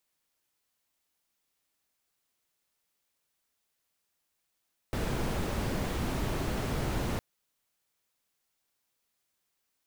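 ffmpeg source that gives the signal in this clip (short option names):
-f lavfi -i "anoisesrc=c=brown:a=0.132:d=2.26:r=44100:seed=1"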